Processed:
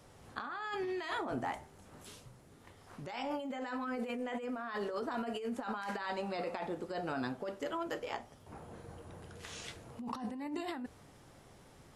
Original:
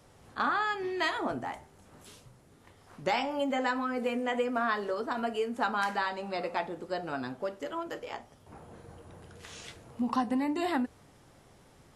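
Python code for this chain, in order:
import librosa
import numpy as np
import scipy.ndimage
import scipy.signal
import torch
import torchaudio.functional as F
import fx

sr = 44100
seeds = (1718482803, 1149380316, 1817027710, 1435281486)

y = fx.over_compress(x, sr, threshold_db=-35.0, ratio=-1.0)
y = y * librosa.db_to_amplitude(-3.5)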